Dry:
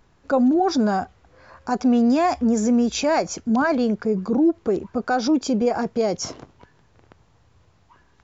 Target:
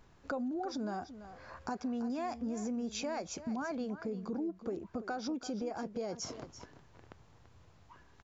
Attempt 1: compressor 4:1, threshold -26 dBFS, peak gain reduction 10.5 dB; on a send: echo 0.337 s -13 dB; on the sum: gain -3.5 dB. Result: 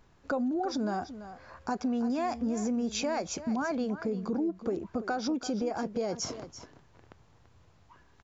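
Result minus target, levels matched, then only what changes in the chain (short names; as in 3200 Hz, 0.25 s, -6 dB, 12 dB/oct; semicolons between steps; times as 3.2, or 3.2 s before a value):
compressor: peak gain reduction -6.5 dB
change: compressor 4:1, threshold -34.5 dBFS, peak gain reduction 17 dB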